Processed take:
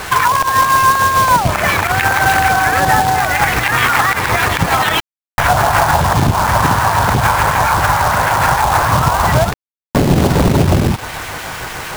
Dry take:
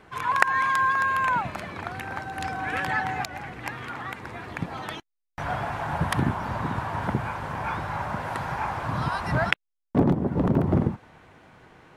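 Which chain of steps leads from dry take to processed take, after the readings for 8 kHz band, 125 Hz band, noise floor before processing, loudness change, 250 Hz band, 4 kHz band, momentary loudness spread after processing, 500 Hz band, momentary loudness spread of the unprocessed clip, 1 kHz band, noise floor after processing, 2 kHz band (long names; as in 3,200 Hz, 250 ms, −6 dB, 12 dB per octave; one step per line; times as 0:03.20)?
+25.0 dB, +13.0 dB, −80 dBFS, +14.5 dB, +9.0 dB, +19.0 dB, 7 LU, +14.0 dB, 13 LU, +15.5 dB, below −85 dBFS, +13.5 dB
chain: phase distortion by the signal itself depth 0.27 ms
parametric band 240 Hz −12 dB 2.4 octaves
in parallel at −3 dB: downward compressor 8 to 1, threshold −37 dBFS, peak gain reduction 22 dB
on the sum: two-band tremolo in antiphase 6.7 Hz, depth 50%, crossover 1,800 Hz
treble cut that deepens with the level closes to 600 Hz, closed at −26.5 dBFS
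log-companded quantiser 4 bits
boost into a limiter +29.5 dB
level −3 dB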